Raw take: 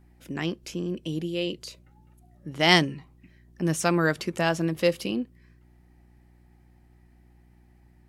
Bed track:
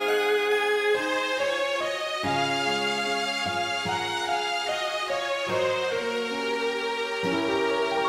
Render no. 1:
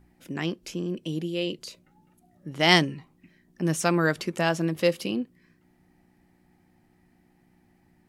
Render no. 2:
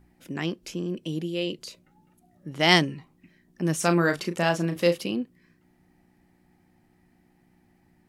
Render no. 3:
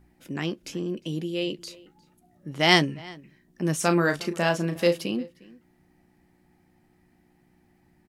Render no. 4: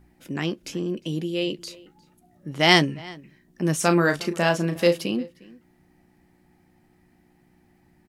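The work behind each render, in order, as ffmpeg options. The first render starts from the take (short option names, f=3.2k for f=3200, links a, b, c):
-af "bandreject=f=60:t=h:w=4,bandreject=f=120:t=h:w=4"
-filter_complex "[0:a]asettb=1/sr,asplit=3[a][b][c];[a]atrim=end=3.764[d];[b]atrim=start=3.76:end=4.98,asetpts=PTS-STARTPTS,afade=t=in:d=0.004:c=qsin,afade=t=out:st=1.216:d=0.004:c=qsin,asplit=2[e][f];[f]adelay=35,volume=-8.5dB[g];[e][g]amix=inputs=2:normalize=0,atrim=end_sample=53802[h];[c]atrim=start=4.976[i];[d][h]acrossfade=d=0.004:c1=hsin:c2=qsin[j];[j][i]acrossfade=d=0.004:c1=qsin:c2=hsin"
-filter_complex "[0:a]asplit=2[a][b];[b]adelay=14,volume=-14dB[c];[a][c]amix=inputs=2:normalize=0,asplit=2[d][e];[e]adelay=355.7,volume=-22dB,highshelf=f=4k:g=-8[f];[d][f]amix=inputs=2:normalize=0"
-af "volume=2.5dB,alimiter=limit=-1dB:level=0:latency=1"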